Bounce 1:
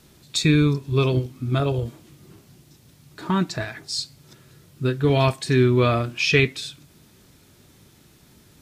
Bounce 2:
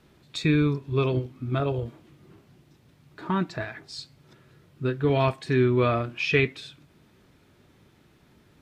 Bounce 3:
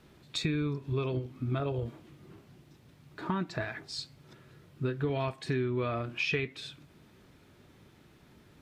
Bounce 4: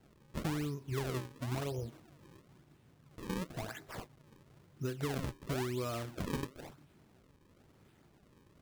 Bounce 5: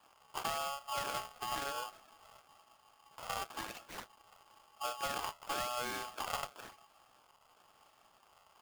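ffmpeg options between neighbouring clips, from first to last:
ffmpeg -i in.wav -af "bass=frequency=250:gain=-3,treble=frequency=4000:gain=-14,volume=-2.5dB" out.wav
ffmpeg -i in.wav -af "acompressor=threshold=-28dB:ratio=6" out.wav
ffmpeg -i in.wav -af "acrusher=samples=36:mix=1:aa=0.000001:lfo=1:lforange=57.6:lforate=0.98,volume=-5.5dB" out.wav
ffmpeg -i in.wav -af "aeval=exprs='val(0)*sgn(sin(2*PI*980*n/s))':channel_layout=same,volume=-2dB" out.wav

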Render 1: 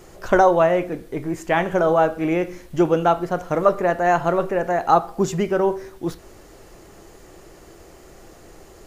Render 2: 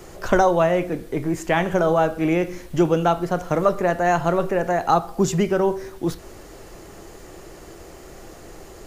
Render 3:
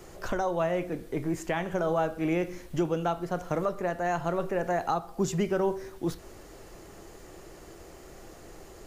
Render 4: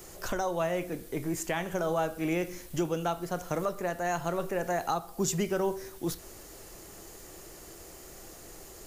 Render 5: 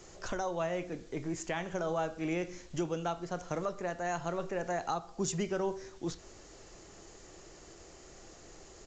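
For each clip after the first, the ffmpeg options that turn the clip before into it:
ffmpeg -i in.wav -filter_complex "[0:a]acrossover=split=210|3000[link_01][link_02][link_03];[link_02]acompressor=threshold=-30dB:ratio=1.5[link_04];[link_01][link_04][link_03]amix=inputs=3:normalize=0,volume=4dB" out.wav
ffmpeg -i in.wav -af "alimiter=limit=-10.5dB:level=0:latency=1:release=471,volume=-6.5dB" out.wav
ffmpeg -i in.wav -af "crystalizer=i=2.5:c=0,volume=-2.5dB" out.wav
ffmpeg -i in.wav -af "aresample=16000,aresample=44100,volume=-4dB" out.wav

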